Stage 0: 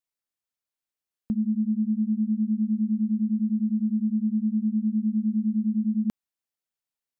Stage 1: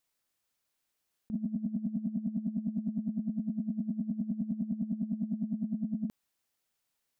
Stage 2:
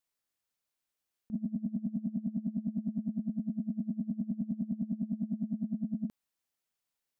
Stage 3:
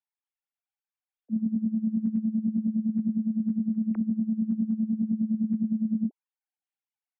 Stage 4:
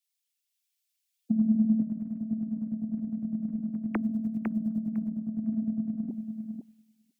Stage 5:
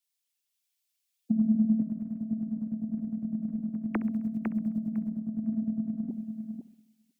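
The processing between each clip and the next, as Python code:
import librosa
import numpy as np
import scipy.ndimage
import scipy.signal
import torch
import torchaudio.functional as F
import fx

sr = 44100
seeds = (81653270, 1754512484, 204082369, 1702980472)

y1 = fx.over_compress(x, sr, threshold_db=-32.0, ratio=-0.5)
y2 = fx.upward_expand(y1, sr, threshold_db=-42.0, expansion=1.5)
y3 = fx.sine_speech(y2, sr)
y3 = y3 * librosa.db_to_amplitude(8.0)
y4 = fx.over_compress(y3, sr, threshold_db=-35.0, ratio=-1.0)
y4 = fx.echo_feedback(y4, sr, ms=504, feedback_pct=17, wet_db=-5.5)
y4 = fx.band_widen(y4, sr, depth_pct=100)
y4 = y4 * librosa.db_to_amplitude(8.0)
y5 = fx.echo_feedback(y4, sr, ms=66, feedback_pct=55, wet_db=-18)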